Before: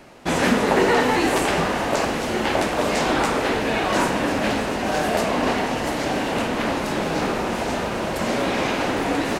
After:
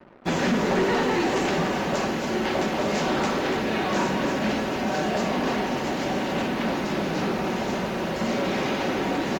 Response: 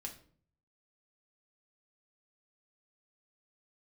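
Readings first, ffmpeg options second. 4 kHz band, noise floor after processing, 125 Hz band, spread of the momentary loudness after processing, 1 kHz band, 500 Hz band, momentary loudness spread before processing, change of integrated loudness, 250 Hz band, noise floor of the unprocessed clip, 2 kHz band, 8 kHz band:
-4.0 dB, -29 dBFS, -1.5 dB, 4 LU, -4.5 dB, -3.5 dB, 6 LU, -3.5 dB, -1.5 dB, -26 dBFS, -4.5 dB, -6.0 dB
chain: -filter_complex "[0:a]highpass=f=180:p=1,afftfilt=real='re*gte(hypot(re,im),0.00891)':imag='im*gte(hypot(re,im),0.00891)':win_size=1024:overlap=0.75,aecho=1:1:5.3:0.31,acrossover=split=340[a][b];[a]acontrast=89[c];[c][b]amix=inputs=2:normalize=0,aresample=16000,aresample=44100,acrusher=bits=6:mix=0:aa=0.5,aecho=1:1:289:0.355,asoftclip=type=tanh:threshold=-11.5dB,volume=-4.5dB" -ar 48000 -c:a aac -b:a 64k

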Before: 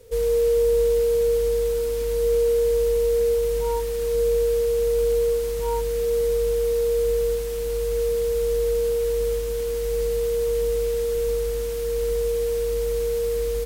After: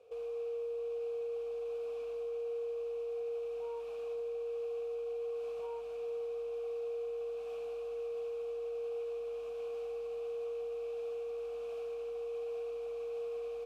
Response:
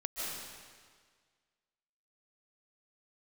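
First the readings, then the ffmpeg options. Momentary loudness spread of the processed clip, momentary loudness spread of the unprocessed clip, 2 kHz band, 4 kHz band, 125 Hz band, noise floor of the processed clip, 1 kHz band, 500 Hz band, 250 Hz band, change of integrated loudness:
2 LU, 5 LU, -16.5 dB, under -20 dB, under -35 dB, -41 dBFS, -14.5 dB, -16.5 dB, under -20 dB, -17.0 dB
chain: -filter_complex "[0:a]alimiter=limit=-22.5dB:level=0:latency=1:release=286,asplit=3[a][b][c];[a]bandpass=f=730:t=q:w=8,volume=0dB[d];[b]bandpass=f=1.09k:t=q:w=8,volume=-6dB[e];[c]bandpass=f=2.44k:t=q:w=8,volume=-9dB[f];[d][e][f]amix=inputs=3:normalize=0,asplit=2[g][h];[1:a]atrim=start_sample=2205,asetrate=48510,aresample=44100,lowpass=7.7k[i];[h][i]afir=irnorm=-1:irlink=0,volume=-11.5dB[j];[g][j]amix=inputs=2:normalize=0,volume=2.5dB"

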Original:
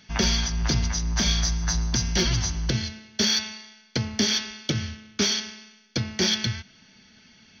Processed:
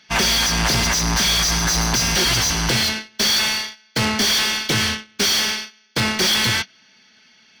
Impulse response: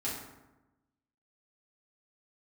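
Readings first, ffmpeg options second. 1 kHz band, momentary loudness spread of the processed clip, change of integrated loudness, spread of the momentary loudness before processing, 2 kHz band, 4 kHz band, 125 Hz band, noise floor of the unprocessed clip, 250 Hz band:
+13.0 dB, 6 LU, +7.0 dB, 10 LU, +11.5 dB, +8.0 dB, +1.5 dB, -56 dBFS, +3.5 dB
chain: -filter_complex "[0:a]asplit=2[a][b];[b]highpass=f=720:p=1,volume=36dB,asoftclip=type=tanh:threshold=-11dB[c];[a][c]amix=inputs=2:normalize=0,lowpass=f=5.9k:p=1,volume=-6dB,agate=range=-25dB:threshold=-21dB:ratio=16:detection=peak"

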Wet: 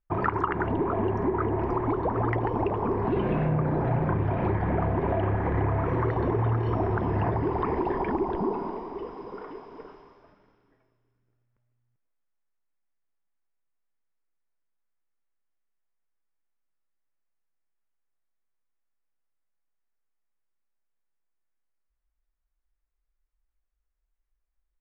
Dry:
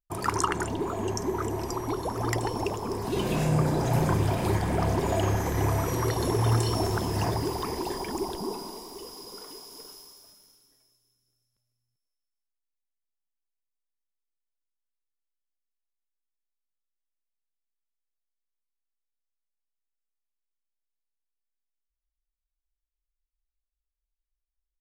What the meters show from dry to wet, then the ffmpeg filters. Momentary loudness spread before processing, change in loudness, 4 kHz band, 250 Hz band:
16 LU, +1.0 dB, under -15 dB, +2.0 dB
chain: -af "lowpass=f=2.1k:w=0.5412,lowpass=f=2.1k:w=1.3066,acompressor=threshold=-30dB:ratio=6,volume=7.5dB"

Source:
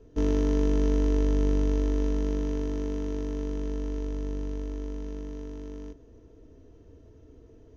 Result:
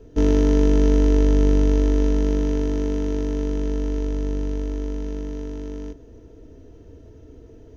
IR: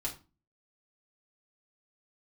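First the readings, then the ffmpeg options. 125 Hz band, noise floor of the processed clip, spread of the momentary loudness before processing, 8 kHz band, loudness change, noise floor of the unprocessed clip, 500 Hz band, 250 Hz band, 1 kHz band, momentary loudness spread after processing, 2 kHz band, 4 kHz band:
+7.5 dB, -46 dBFS, 14 LU, n/a, +7.5 dB, -54 dBFS, +7.5 dB, +7.5 dB, +6.5 dB, 14 LU, +7.5 dB, +7.5 dB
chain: -af "bandreject=f=1.1k:w=8.3,volume=7.5dB"

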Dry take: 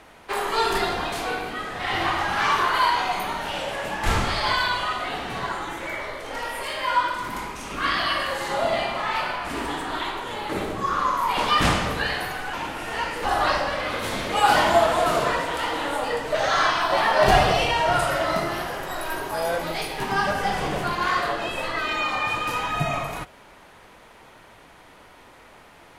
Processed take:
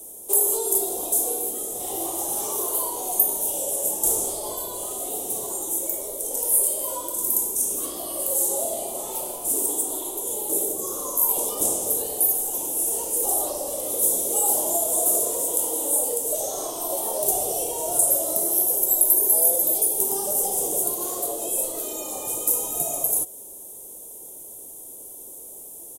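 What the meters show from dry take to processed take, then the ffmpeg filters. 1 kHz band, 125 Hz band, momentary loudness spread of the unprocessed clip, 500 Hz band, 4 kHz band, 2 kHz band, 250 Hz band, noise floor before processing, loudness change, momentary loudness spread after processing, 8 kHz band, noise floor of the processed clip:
-13.0 dB, under -15 dB, 10 LU, -3.5 dB, -13.0 dB, under -25 dB, -5.0 dB, -49 dBFS, +2.0 dB, 10 LU, +18.5 dB, -41 dBFS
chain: -filter_complex "[0:a]firequalizer=gain_entry='entry(150,0);entry(390,12);entry(1600,-26);entry(3500,1);entry(12000,5)':delay=0.05:min_phase=1,acrossover=split=340|1400[a][b][c];[a]acompressor=threshold=-39dB:ratio=4[d];[b]acompressor=threshold=-21dB:ratio=4[e];[c]acompressor=threshold=-36dB:ratio=4[f];[d][e][f]amix=inputs=3:normalize=0,aexciter=amount=15.6:drive=9.1:freq=7k,volume=-7dB"

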